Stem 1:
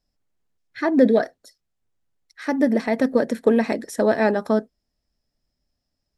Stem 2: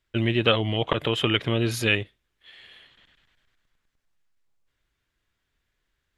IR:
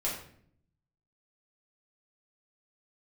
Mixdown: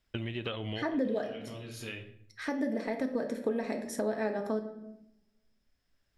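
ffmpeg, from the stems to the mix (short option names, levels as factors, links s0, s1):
-filter_complex "[0:a]volume=0.447,asplit=3[s0][s1][s2];[s1]volume=0.501[s3];[1:a]acompressor=threshold=0.0501:ratio=4,volume=0.708,asplit=2[s4][s5];[s5]volume=0.133[s6];[s2]apad=whole_len=272250[s7];[s4][s7]sidechaincompress=threshold=0.00631:ratio=4:attack=16:release=1080[s8];[2:a]atrim=start_sample=2205[s9];[s3][s6]amix=inputs=2:normalize=0[s10];[s10][s9]afir=irnorm=-1:irlink=0[s11];[s0][s8][s11]amix=inputs=3:normalize=0,acompressor=threshold=0.02:ratio=2.5"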